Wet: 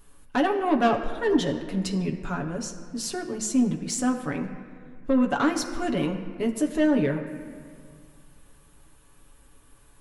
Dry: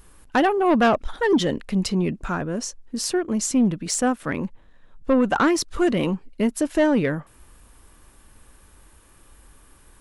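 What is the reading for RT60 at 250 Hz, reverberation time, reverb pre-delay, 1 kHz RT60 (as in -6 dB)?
2.4 s, 2.0 s, 7 ms, 1.9 s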